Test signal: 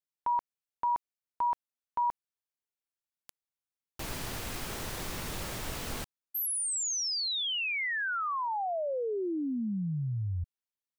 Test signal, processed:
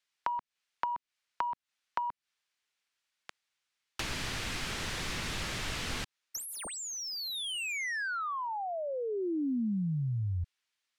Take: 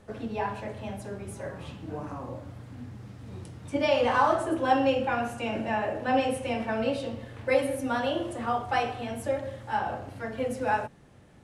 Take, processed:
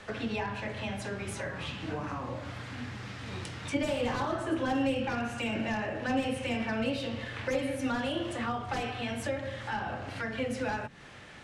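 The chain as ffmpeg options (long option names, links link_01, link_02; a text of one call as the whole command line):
ffmpeg -i in.wav -filter_complex "[0:a]acrossover=split=1500[link_01][link_02];[link_02]aeval=exprs='0.0891*sin(PI/2*5.01*val(0)/0.0891)':channel_layout=same[link_03];[link_01][link_03]amix=inputs=2:normalize=0,adynamicsmooth=sensitivity=1:basefreq=5600,equalizer=frequency=640:width_type=o:width=2.2:gain=4.5,acrossover=split=310[link_04][link_05];[link_05]acompressor=threshold=-40dB:ratio=3:attack=26:release=269:knee=2.83:detection=peak[link_06];[link_04][link_06]amix=inputs=2:normalize=0" out.wav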